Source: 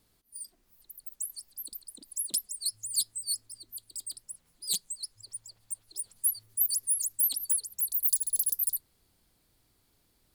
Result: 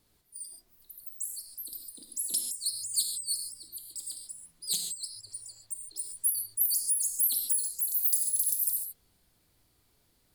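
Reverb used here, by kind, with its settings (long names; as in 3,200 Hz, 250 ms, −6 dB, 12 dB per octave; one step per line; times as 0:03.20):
reverb whose tail is shaped and stops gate 170 ms flat, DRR 2.5 dB
level −1 dB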